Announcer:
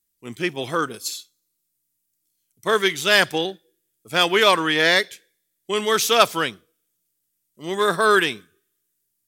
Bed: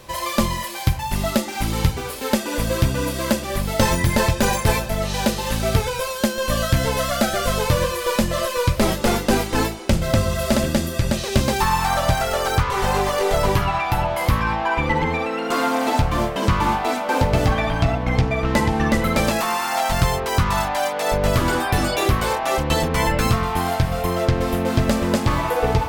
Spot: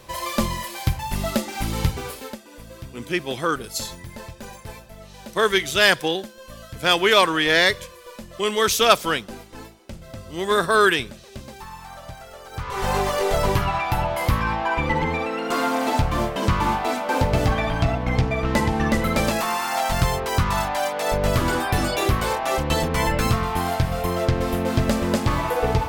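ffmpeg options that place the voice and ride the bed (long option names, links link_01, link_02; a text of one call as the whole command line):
ffmpeg -i stem1.wav -i stem2.wav -filter_complex "[0:a]adelay=2700,volume=0dB[link_01];[1:a]volume=14.5dB,afade=type=out:start_time=2.09:duration=0.27:silence=0.149624,afade=type=in:start_time=12.51:duration=0.42:silence=0.133352[link_02];[link_01][link_02]amix=inputs=2:normalize=0" out.wav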